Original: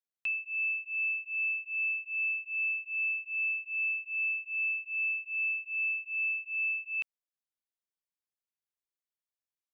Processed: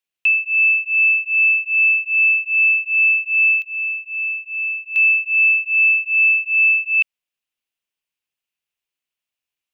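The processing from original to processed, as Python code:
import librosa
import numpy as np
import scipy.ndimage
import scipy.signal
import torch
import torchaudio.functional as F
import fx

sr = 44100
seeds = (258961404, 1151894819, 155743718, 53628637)

y = fx.peak_eq(x, sr, hz=2700.0, db=fx.steps((0.0, 11.5), (3.62, 3.0), (4.96, 12.0)), octaves=0.63)
y = y * 10.0 ** (5.5 / 20.0)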